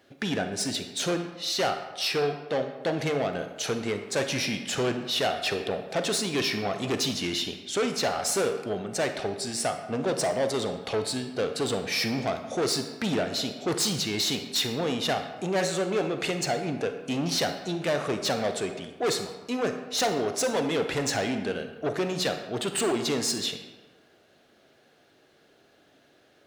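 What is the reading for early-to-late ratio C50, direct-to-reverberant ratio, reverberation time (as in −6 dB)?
8.0 dB, 7.0 dB, 1.2 s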